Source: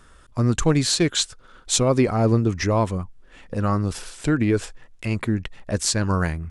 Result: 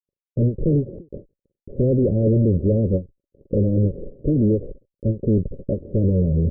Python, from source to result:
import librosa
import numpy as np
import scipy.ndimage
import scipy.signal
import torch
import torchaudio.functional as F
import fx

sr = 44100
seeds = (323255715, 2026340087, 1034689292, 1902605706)

y = fx.spec_flatten(x, sr, power=0.68)
y = fx.fuzz(y, sr, gain_db=35.0, gate_db=-39.0)
y = scipy.signal.sosfilt(scipy.signal.cheby1(6, 3, 570.0, 'lowpass', fs=sr, output='sos'), y)
y = fx.end_taper(y, sr, db_per_s=260.0)